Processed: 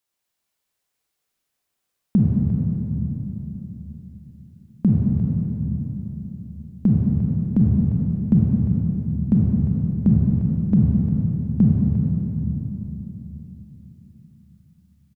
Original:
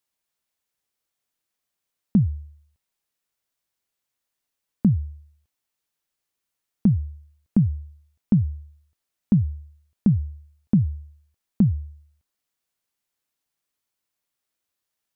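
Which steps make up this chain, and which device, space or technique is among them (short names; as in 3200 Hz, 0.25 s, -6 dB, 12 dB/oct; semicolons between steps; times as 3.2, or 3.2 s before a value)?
cave (echo 0.351 s -11 dB; reverb RT60 3.6 s, pre-delay 28 ms, DRR -3 dB)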